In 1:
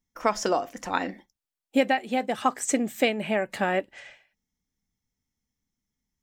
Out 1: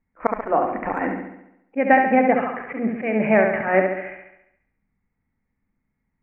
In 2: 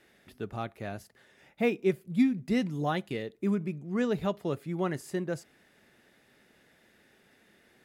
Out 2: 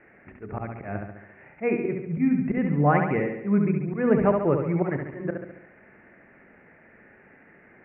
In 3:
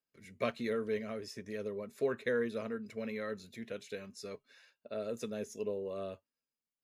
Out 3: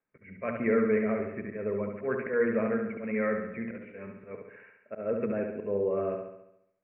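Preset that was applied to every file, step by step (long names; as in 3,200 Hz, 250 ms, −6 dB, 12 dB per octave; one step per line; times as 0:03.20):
Butterworth low-pass 2,400 Hz 72 dB per octave
de-essing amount 95%
mains-hum notches 60/120/180/240/300/360/420 Hz
volume swells 151 ms
on a send: flutter between parallel walls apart 11.9 metres, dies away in 0.81 s
on the sum: level +9 dB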